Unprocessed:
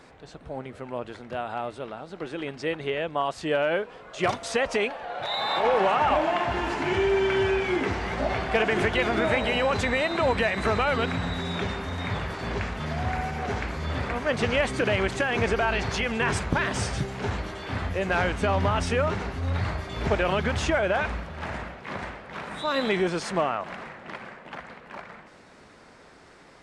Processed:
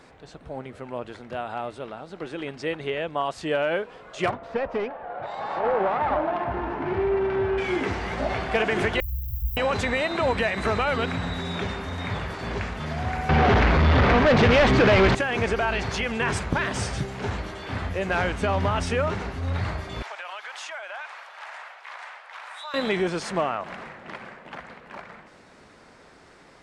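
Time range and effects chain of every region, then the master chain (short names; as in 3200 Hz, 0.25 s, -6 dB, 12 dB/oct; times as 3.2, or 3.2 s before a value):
4.29–7.58 self-modulated delay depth 0.17 ms + LPF 1400 Hz
9–9.57 switching spikes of -21.5 dBFS + inverse Chebyshev band-stop 170–7400 Hz, stop band 50 dB + resonant low shelf 200 Hz +11.5 dB, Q 3
13.29–15.15 sample leveller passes 5 + air absorption 200 m
20.02–22.74 HPF 770 Hz 24 dB/oct + compressor 2.5:1, threshold -36 dBFS
whole clip: dry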